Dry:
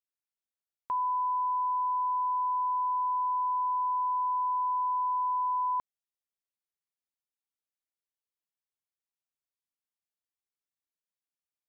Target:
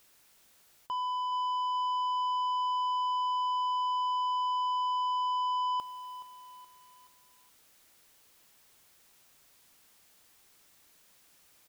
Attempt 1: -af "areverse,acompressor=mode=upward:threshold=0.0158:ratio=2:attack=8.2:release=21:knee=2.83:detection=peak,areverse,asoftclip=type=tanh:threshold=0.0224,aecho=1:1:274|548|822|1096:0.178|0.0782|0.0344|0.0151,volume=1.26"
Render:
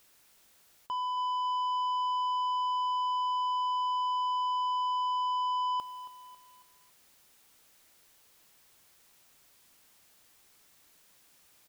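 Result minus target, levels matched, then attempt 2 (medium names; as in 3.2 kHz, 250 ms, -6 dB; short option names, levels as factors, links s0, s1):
echo 149 ms early
-af "areverse,acompressor=mode=upward:threshold=0.0158:ratio=2:attack=8.2:release=21:knee=2.83:detection=peak,areverse,asoftclip=type=tanh:threshold=0.0224,aecho=1:1:423|846|1269|1692:0.178|0.0782|0.0344|0.0151,volume=1.26"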